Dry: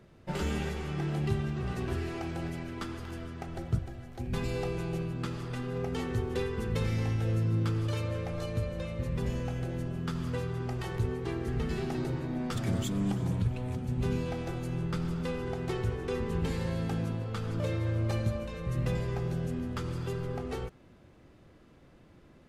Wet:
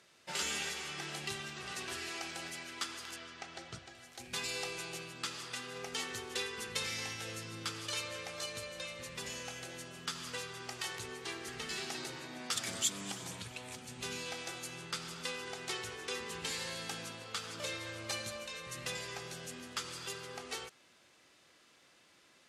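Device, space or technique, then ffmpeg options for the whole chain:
piezo pickup straight into a mixer: -filter_complex "[0:a]lowpass=7.8k,aderivative,asettb=1/sr,asplit=3[a][b][c];[a]atrim=end=3.164[d];[b]atrim=start=3.16:end=3.95,asetpts=PTS-STARTPTS,afade=t=in:d=0.004:c=qsin,afade=t=out:st=0.786:d=0.004:c=qsin,lowpass=5.7k[e];[c]atrim=start=3.946[f];[d][e]acrossfade=d=0.004:c1=hsin:c2=qsin[g];[g][f]acrossfade=d=0.004:c1=qsin:c2=hsin,volume=13.5dB"

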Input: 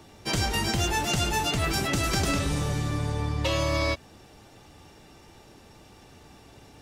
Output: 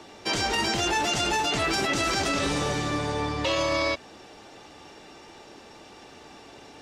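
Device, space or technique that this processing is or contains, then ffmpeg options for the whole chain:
DJ mixer with the lows and highs turned down: -filter_complex "[0:a]acrossover=split=240 7800:gain=0.2 1 0.158[a][b][c];[a][b][c]amix=inputs=3:normalize=0,alimiter=limit=-23.5dB:level=0:latency=1:release=28,volume=6.5dB"

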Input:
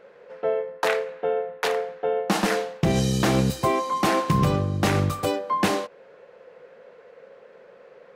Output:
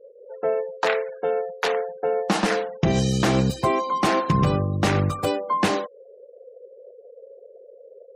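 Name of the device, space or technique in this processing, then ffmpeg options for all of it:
parallel compression: -filter_complex "[0:a]asplit=2[a][b];[b]acompressor=threshold=-32dB:ratio=12,volume=-5.5dB[c];[a][c]amix=inputs=2:normalize=0,asettb=1/sr,asplit=3[d][e][f];[d]atrim=end=0.994[g];[e]atrim=start=0.99:end=1.59,asetpts=PTS-STARTPTS,afade=t=in:d=0.004:c=qsin,afade=t=out:st=0.596:d=0.004:c=qsin,aemphasis=mode=production:type=cd[h];[f]atrim=start=1.586[i];[g][h]acrossfade=d=0.004:c1=hsin:c2=qsin[j];[j][i]acrossfade=d=0.004:c1=qsin:c2=hsin,afftfilt=real='re*gte(hypot(re,im),0.0178)':imag='im*gte(hypot(re,im),0.0178)':win_size=1024:overlap=0.75"

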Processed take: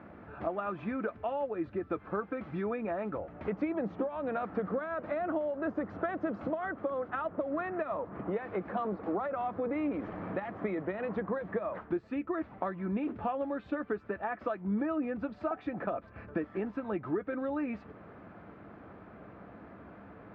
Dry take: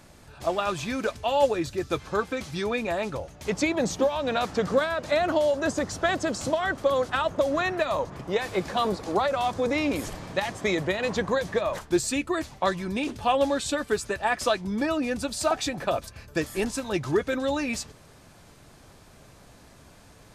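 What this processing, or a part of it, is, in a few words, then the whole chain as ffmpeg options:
bass amplifier: -af "acompressor=threshold=-37dB:ratio=4,highpass=77,equalizer=f=140:t=q:w=4:g=-5,equalizer=f=200:t=q:w=4:g=8,equalizer=f=310:t=q:w=4:g=7,equalizer=f=460:t=q:w=4:g=4,equalizer=f=690:t=q:w=4:g=4,equalizer=f=1.3k:t=q:w=4:g=6,lowpass=f=2.1k:w=0.5412,lowpass=f=2.1k:w=1.3066"

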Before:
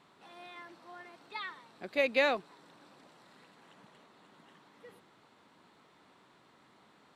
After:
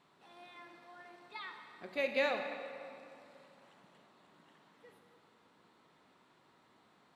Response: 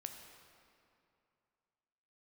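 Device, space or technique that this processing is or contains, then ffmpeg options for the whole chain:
stairwell: -filter_complex "[1:a]atrim=start_sample=2205[a];[0:a][a]afir=irnorm=-1:irlink=0,volume=-1dB"

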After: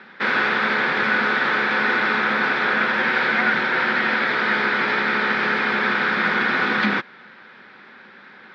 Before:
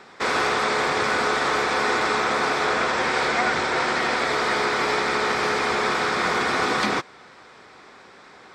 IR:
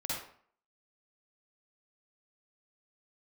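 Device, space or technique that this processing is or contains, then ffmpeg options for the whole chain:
kitchen radio: -af "highpass=170,equalizer=f=210:t=q:w=4:g=8,equalizer=f=300:t=q:w=4:g=-4,equalizer=f=440:t=q:w=4:g=-6,equalizer=f=690:t=q:w=4:g=-9,equalizer=f=1.1k:t=q:w=4:g=-6,equalizer=f=1.6k:t=q:w=4:g=7,lowpass=f=3.7k:w=0.5412,lowpass=f=3.7k:w=1.3066,volume=2.5dB"

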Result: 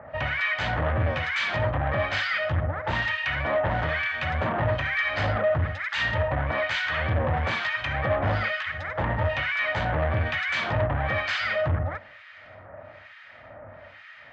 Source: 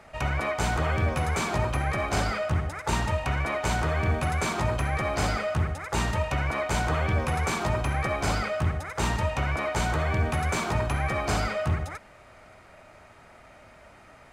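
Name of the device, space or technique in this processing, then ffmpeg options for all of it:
guitar amplifier with harmonic tremolo: -filter_complex "[0:a]acrossover=split=1400[a][b];[a]aeval=exprs='val(0)*(1-1/2+1/2*cos(2*PI*1.1*n/s))':c=same[c];[b]aeval=exprs='val(0)*(1-1/2-1/2*cos(2*PI*1.1*n/s))':c=same[d];[c][d]amix=inputs=2:normalize=0,asoftclip=type=tanh:threshold=-28.5dB,highpass=76,equalizer=f=98:t=q:w=4:g=8,equalizer=f=190:t=q:w=4:g=-4,equalizer=f=390:t=q:w=4:g=-9,equalizer=f=570:t=q:w=4:g=7,equalizer=f=1.8k:t=q:w=4:g=10,equalizer=f=3.2k:t=q:w=4:g=5,lowpass=f=4.2k:w=0.5412,lowpass=f=4.2k:w=1.3066,volume=7dB"

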